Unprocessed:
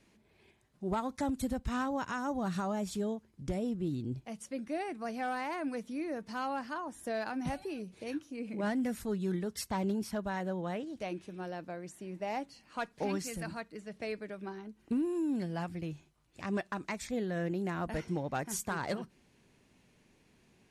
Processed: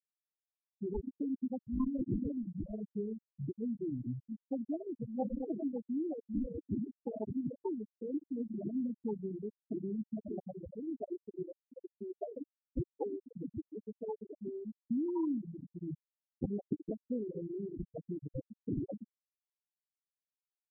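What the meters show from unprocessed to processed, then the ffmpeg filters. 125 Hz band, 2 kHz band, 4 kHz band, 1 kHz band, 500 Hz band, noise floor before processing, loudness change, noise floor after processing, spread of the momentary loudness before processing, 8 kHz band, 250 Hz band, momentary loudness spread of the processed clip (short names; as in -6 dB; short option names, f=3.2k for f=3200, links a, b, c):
-3.5 dB, under -40 dB, under -35 dB, -15.0 dB, -3.5 dB, -68 dBFS, -3.0 dB, under -85 dBFS, 8 LU, under -35 dB, -1.0 dB, 9 LU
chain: -af "aecho=1:1:64|128|192|256|320:0.211|0.106|0.0528|0.0264|0.0132,acompressor=threshold=-47dB:ratio=4,highpass=f=110:w=0.5412,highpass=f=110:w=1.3066,equalizer=f=180:t=q:w=4:g=-7,equalizer=f=710:t=q:w=4:g=-7,equalizer=f=1.1k:t=q:w=4:g=3,equalizer=f=1.6k:t=q:w=4:g=6,lowpass=f=2.7k:w=0.5412,lowpass=f=2.7k:w=1.3066,acrusher=samples=34:mix=1:aa=0.000001,acompressor=mode=upward:threshold=-59dB:ratio=2.5,afftfilt=real='re*gte(hypot(re,im),0.0224)':imag='im*gte(hypot(re,im),0.0224)':win_size=1024:overlap=0.75,volume=14dB"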